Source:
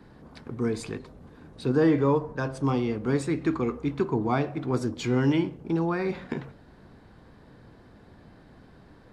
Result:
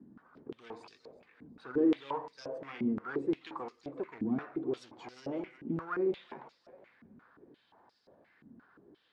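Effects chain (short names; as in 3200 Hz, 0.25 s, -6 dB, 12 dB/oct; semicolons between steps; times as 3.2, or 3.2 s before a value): bin magnitudes rounded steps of 15 dB; in parallel at -7 dB: wavefolder -26.5 dBFS; on the sum: split-band echo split 440 Hz, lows 98 ms, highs 0.366 s, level -15 dB; stepped band-pass 5.7 Hz 240–5000 Hz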